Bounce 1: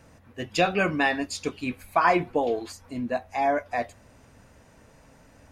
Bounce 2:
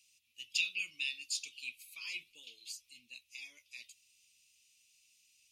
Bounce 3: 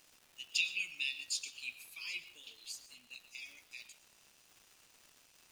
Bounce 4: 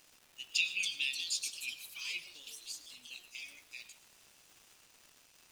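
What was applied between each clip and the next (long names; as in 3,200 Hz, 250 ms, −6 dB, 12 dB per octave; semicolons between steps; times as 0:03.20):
elliptic high-pass filter 2,600 Hz, stop band 40 dB; level −2 dB
surface crackle 530 per second −51 dBFS; on a send at −13.5 dB: convolution reverb RT60 0.35 s, pre-delay 75 ms
delay with pitch and tempo change per echo 393 ms, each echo +4 semitones, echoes 3, each echo −6 dB; level +1.5 dB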